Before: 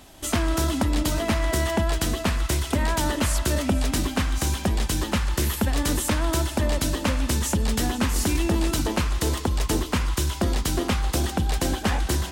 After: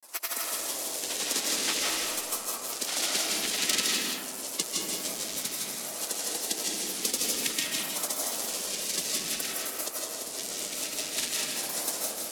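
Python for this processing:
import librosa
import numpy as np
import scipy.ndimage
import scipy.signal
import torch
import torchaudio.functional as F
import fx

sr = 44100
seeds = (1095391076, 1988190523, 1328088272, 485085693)

y = fx.halfwave_hold(x, sr)
y = scipy.signal.sosfilt(scipy.signal.butter(2, 11000.0, 'lowpass', fs=sr, output='sos'), y)
y = fx.peak_eq(y, sr, hz=100.0, db=-14.5, octaves=0.88)
y = fx.transient(y, sr, attack_db=7, sustain_db=-9)
y = fx.filter_lfo_highpass(y, sr, shape='saw_down', hz=0.53, low_hz=830.0, high_hz=2400.0, q=1.1)
y = fx.spec_gate(y, sr, threshold_db=-15, keep='weak')
y = fx.granulator(y, sr, seeds[0], grain_ms=100.0, per_s=20.0, spray_ms=100.0, spread_st=3)
y = y + 10.0 ** (-5.5 / 20.0) * np.pad(y, (int(162 * sr / 1000.0), 0))[:len(y)]
y = fx.rev_freeverb(y, sr, rt60_s=1.1, hf_ratio=0.45, predelay_ms=115, drr_db=-2.0)
y = fx.band_squash(y, sr, depth_pct=40)
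y = y * 10.0 ** (4.0 / 20.0)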